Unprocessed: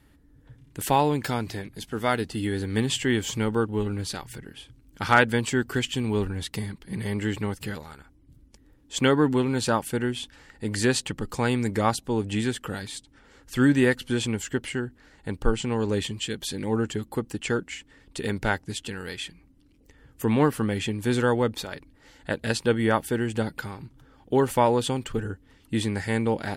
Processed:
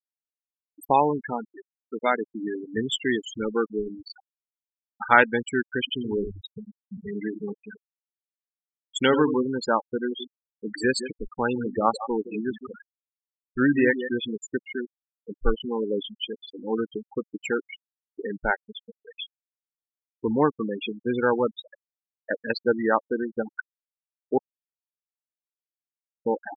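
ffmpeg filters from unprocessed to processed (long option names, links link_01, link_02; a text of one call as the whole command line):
ffmpeg -i in.wav -filter_complex "[0:a]asettb=1/sr,asplit=3[link_01][link_02][link_03];[link_01]atrim=end=5.794[link_04];[link_02]atrim=start=5.79:end=9.43,asetpts=PTS-STARTPTS,afade=type=in:duration=0.004:curve=qsin,afade=type=out:start_time=3.636:duration=0.004:curve=qsin,aecho=1:1:83:0.376,atrim=end_sample=160524[link_05];[link_03]atrim=start=9.426[link_06];[link_04][link_05]acrossfade=duration=0.004:curve1=hsin:curve2=qsin[link_07];[link_07][link_06]acrossfade=duration=0.004:curve1=qsin:curve2=hsin,asettb=1/sr,asplit=3[link_08][link_09][link_10];[link_08]atrim=end=9.954[link_11];[link_09]atrim=start=9.95:end=14.26,asetpts=PTS-STARTPTS,afade=type=in:duration=0.004:curve=qsin,afade=type=out:start_time=4.306:duration=0.004:curve=qsin,aecho=1:1:162:0.335,atrim=end_sample=190071[link_12];[link_10]atrim=start=14.256[link_13];[link_11][link_12]acrossfade=duration=0.004:curve1=hsin:curve2=qsin[link_14];[link_14][link_13]acrossfade=duration=0.004:curve1=qsin:curve2=hsin,asplit=3[link_15][link_16][link_17];[link_15]atrim=end=24.38,asetpts=PTS-STARTPTS,afade=type=out:start_time=24.376:duration=0.004:curve=hsin[link_18];[link_16]atrim=start=24.38:end=26.26,asetpts=PTS-STARTPTS,volume=0[link_19];[link_17]atrim=start=26.26,asetpts=PTS-STARTPTS,afade=type=in:duration=0.004:curve=hsin[link_20];[link_18][link_19][link_20]concat=n=3:v=0:a=1,equalizer=frequency=97:width_type=o:width=2.3:gain=-12,afftfilt=real='re*gte(hypot(re,im),0.1)':imag='im*gte(hypot(re,im),0.1)':win_size=1024:overlap=0.75,volume=3dB" out.wav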